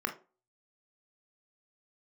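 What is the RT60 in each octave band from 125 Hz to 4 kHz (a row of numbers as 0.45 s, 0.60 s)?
0.30 s, 0.35 s, 0.35 s, 0.30 s, 0.25 s, 0.20 s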